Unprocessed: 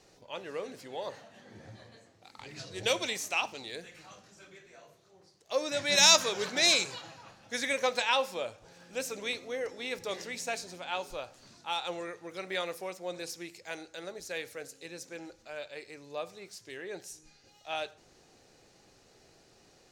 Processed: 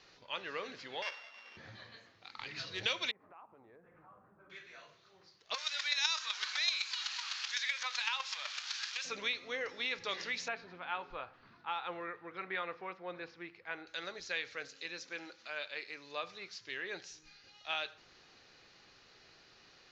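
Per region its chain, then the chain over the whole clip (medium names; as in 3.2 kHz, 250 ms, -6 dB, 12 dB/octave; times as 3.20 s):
1.02–1.57 s: sorted samples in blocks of 16 samples + high-pass 620 Hz
3.11–4.50 s: low-pass 1.1 kHz 24 dB/octave + compression 4:1, threshold -54 dBFS
5.54–9.05 s: zero-crossing glitches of -20.5 dBFS + high-pass 810 Hz 24 dB/octave + square tremolo 7.9 Hz, depth 60%, duty 10%
10.48–13.87 s: low-pass 1.6 kHz + band-stop 580 Hz, Q 10
14.76–16.24 s: high-pass 170 Hz + tape noise reduction on one side only encoder only
whole clip: steep low-pass 6.8 kHz 72 dB/octave; high-order bell 2.2 kHz +10.5 dB 2.5 oct; compression 2.5:1, threshold -28 dBFS; trim -5.5 dB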